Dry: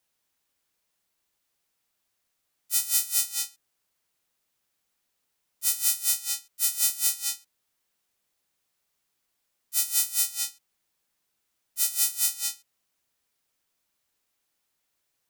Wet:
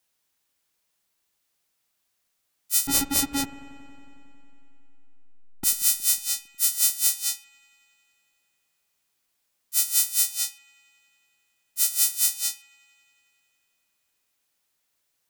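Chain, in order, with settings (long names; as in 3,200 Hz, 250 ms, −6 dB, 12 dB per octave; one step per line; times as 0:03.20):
high-shelf EQ 2,100 Hz +3 dB
0:02.87–0:05.64: slack as between gear wheels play −14.5 dBFS
delay with a low-pass on its return 91 ms, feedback 81%, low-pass 2,500 Hz, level −17.5 dB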